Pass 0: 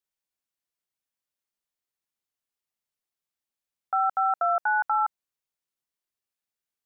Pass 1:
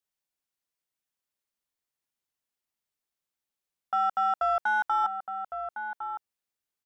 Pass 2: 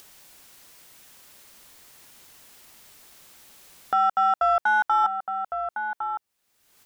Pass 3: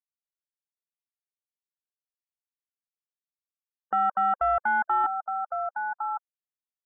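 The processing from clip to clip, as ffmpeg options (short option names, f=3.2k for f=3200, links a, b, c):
-filter_complex "[0:a]asplit=2[a][b];[b]asoftclip=type=tanh:threshold=-28dB,volume=-6dB[c];[a][c]amix=inputs=2:normalize=0,asplit=2[d][e];[e]adelay=1108,volume=-7dB,highshelf=f=4k:g=-24.9[f];[d][f]amix=inputs=2:normalize=0,volume=-3.5dB"
-af "acompressor=mode=upward:threshold=-31dB:ratio=2.5,volume=5dB"
-af "afftfilt=real='re*gte(hypot(re,im),0.0316)':imag='im*gte(hypot(re,im),0.0316)':win_size=1024:overlap=0.75,asoftclip=type=tanh:threshold=-17dB,asuperstop=centerf=4400:order=4:qfactor=0.52"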